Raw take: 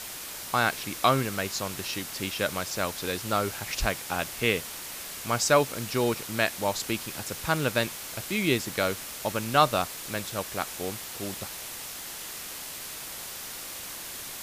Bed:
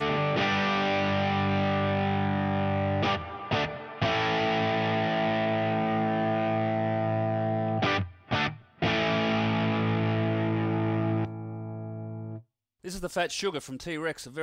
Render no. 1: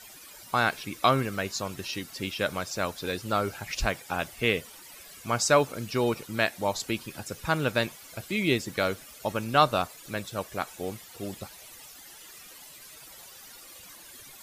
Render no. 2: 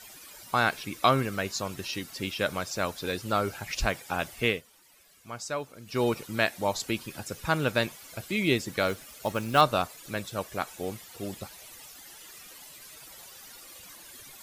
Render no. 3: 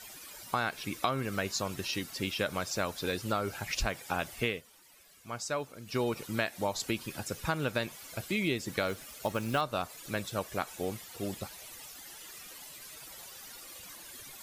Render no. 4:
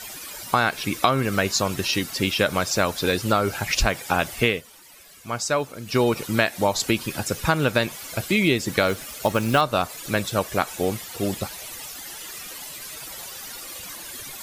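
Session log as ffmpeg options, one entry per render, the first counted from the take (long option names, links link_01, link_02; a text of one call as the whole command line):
ffmpeg -i in.wav -af "afftdn=noise_reduction=14:noise_floor=-39" out.wav
ffmpeg -i in.wav -filter_complex "[0:a]asettb=1/sr,asplit=3[link_01][link_02][link_03];[link_01]atrim=end=8.884[link_04];[link_02]atrim=start=8.88:end=9.61,asetpts=PTS-STARTPTS,afade=type=in:duration=0.004:curve=qsin,afade=type=out:start_time=0.726:duration=0.004:curve=qsin,acrusher=bits=5:mode=log:mix=0:aa=0.000001[link_05];[link_03]atrim=start=9.606[link_06];[link_04][link_05]acrossfade=duration=0.004:curve1=hsin:curve2=qsin[link_07];[link_07][link_06]acrossfade=duration=0.004:curve1=qsin:curve2=hsin,asplit=3[link_08][link_09][link_10];[link_08]atrim=end=4.62,asetpts=PTS-STARTPTS,afade=type=out:start_time=4.46:duration=0.16:silence=0.251189[link_11];[link_09]atrim=start=4.62:end=5.85,asetpts=PTS-STARTPTS,volume=-12dB[link_12];[link_10]atrim=start=5.85,asetpts=PTS-STARTPTS,afade=type=in:duration=0.16:silence=0.251189[link_13];[link_11][link_12][link_13]concat=n=3:v=0:a=1" out.wav
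ffmpeg -i in.wav -af "acompressor=threshold=-27dB:ratio=6" out.wav
ffmpeg -i in.wav -af "volume=11dB" out.wav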